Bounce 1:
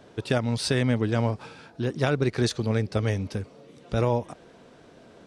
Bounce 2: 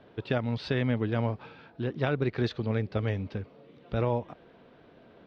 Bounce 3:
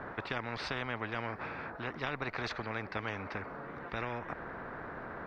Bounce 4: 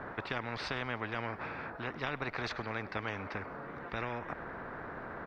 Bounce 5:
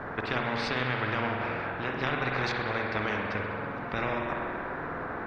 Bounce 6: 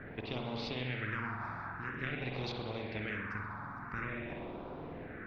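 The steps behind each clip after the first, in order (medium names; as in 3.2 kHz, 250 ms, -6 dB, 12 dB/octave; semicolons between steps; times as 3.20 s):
low-pass 3.7 kHz 24 dB/octave; trim -4 dB
resonant high shelf 2.2 kHz -13 dB, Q 3; spectrum-flattening compressor 4:1; trim -7.5 dB
feedback delay 103 ms, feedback 54%, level -23 dB
spring tank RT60 2 s, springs 47 ms, chirp 20 ms, DRR 0 dB; trim +5 dB
phase shifter stages 4, 0.48 Hz, lowest notch 470–1700 Hz; trim -6 dB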